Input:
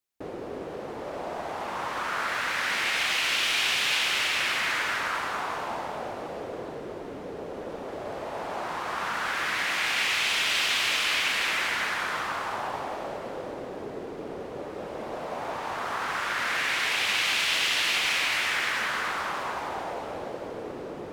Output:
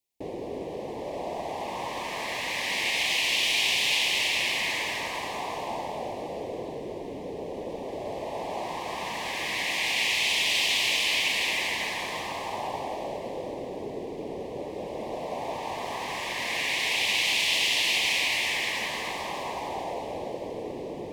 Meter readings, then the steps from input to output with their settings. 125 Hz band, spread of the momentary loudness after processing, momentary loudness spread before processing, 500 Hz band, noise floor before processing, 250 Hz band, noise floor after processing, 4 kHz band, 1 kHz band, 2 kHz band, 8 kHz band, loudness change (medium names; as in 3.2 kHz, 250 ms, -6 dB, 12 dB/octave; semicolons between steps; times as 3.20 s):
+1.5 dB, 14 LU, 14 LU, +1.5 dB, -38 dBFS, +1.5 dB, -37 dBFS, +1.5 dB, -2.5 dB, -1.5 dB, +1.5 dB, 0.0 dB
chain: Butterworth band-stop 1.4 kHz, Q 1.4; trim +1.5 dB